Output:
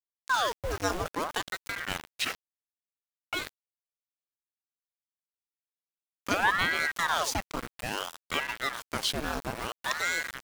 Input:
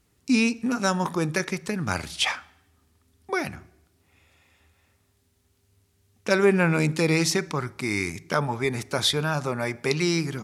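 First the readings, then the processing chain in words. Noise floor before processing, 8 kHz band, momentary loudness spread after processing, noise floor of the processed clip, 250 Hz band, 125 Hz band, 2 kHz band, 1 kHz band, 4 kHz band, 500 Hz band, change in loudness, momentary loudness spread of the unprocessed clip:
-67 dBFS, -5.0 dB, 9 LU, under -85 dBFS, -15.5 dB, -15.5 dB, -1.5 dB, 0.0 dB, -4.0 dB, -11.0 dB, -5.5 dB, 8 LU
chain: sample gate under -27 dBFS; ring modulator with a swept carrier 960 Hz, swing 90%, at 0.59 Hz; gain -3.5 dB

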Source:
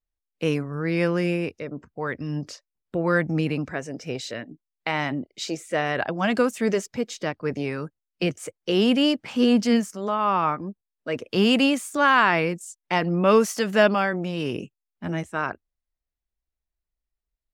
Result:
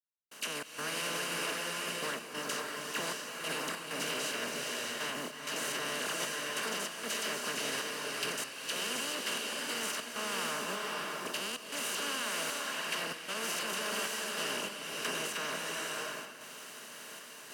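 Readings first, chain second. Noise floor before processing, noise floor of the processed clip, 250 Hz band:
under -85 dBFS, -49 dBFS, -21.5 dB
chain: per-bin compression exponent 0.2; dispersion lows, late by 47 ms, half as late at 1700 Hz; limiter -6.5 dBFS, peak gain reduction 7.5 dB; pre-emphasis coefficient 0.9; gate -31 dBFS, range -16 dB; compressor, threshold -39 dBFS, peak gain reduction 14 dB; HPF 97 Hz; step gate "..xx.xxxxx" 96 bpm -60 dB; bloom reverb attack 0.62 s, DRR -1 dB; gain +3 dB

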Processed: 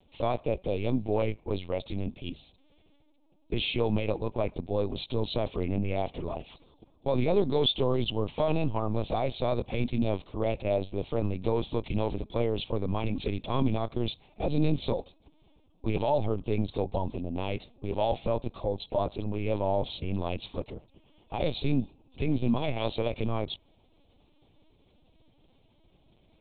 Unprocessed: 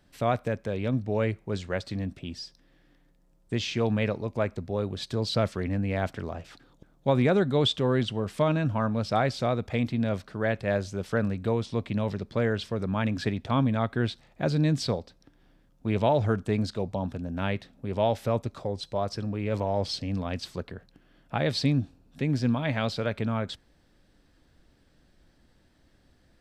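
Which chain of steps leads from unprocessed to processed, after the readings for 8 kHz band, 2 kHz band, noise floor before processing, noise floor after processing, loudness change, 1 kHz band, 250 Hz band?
under -30 dB, -7.5 dB, -63 dBFS, -64 dBFS, -2.5 dB, -2.5 dB, -3.0 dB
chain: low shelf 340 Hz -5.5 dB; limiter -20 dBFS, peak gain reduction 8.5 dB; Butterworth band-stop 1600 Hz, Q 1.3; LPC vocoder at 8 kHz pitch kept; gain +4 dB

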